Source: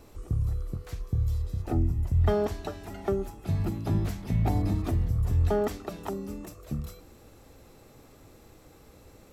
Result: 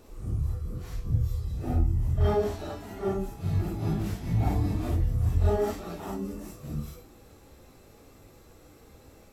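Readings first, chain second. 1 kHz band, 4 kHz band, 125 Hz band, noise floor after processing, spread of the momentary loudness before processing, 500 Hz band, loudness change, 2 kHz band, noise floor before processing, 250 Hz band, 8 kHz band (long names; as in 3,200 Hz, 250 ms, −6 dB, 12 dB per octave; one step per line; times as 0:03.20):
+0.5 dB, 0.0 dB, 0.0 dB, −54 dBFS, 12 LU, 0.0 dB, 0.0 dB, −0.5 dB, −55 dBFS, −0.5 dB, 0.0 dB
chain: random phases in long frames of 200 ms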